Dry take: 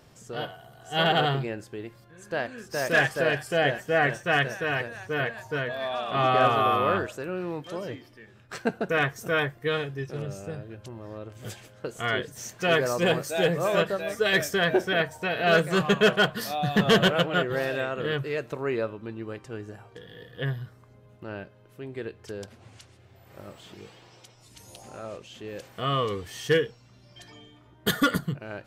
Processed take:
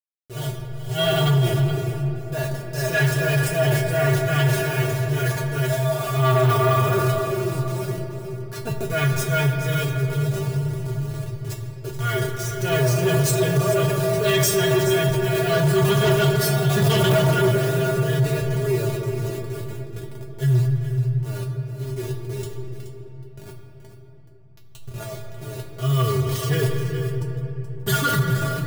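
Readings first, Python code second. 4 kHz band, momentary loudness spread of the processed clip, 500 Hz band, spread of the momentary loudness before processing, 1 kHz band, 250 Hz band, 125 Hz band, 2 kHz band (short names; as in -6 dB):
+1.5 dB, 14 LU, +4.0 dB, 19 LU, +0.5 dB, +5.0 dB, +14.5 dB, -0.5 dB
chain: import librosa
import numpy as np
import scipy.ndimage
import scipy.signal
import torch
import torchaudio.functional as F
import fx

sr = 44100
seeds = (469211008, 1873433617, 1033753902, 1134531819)

p1 = fx.delta_hold(x, sr, step_db=-33.5)
p2 = fx.low_shelf(p1, sr, hz=440.0, db=11.0)
p3 = fx.transient(p2, sr, attack_db=-3, sustain_db=10)
p4 = fx.high_shelf(p3, sr, hz=4300.0, db=11.0)
p5 = fx.comb_fb(p4, sr, f0_hz=130.0, decay_s=0.16, harmonics='odd', damping=0.0, mix_pct=100)
p6 = p5 + fx.echo_single(p5, sr, ms=426, db=-11.5, dry=0)
p7 = fx.room_shoebox(p6, sr, seeds[0], volume_m3=220.0, walls='hard', distance_m=0.33)
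p8 = fx.fold_sine(p7, sr, drive_db=8, ceiling_db=-12.5)
y = p7 + (p8 * librosa.db_to_amplitude(-8.0))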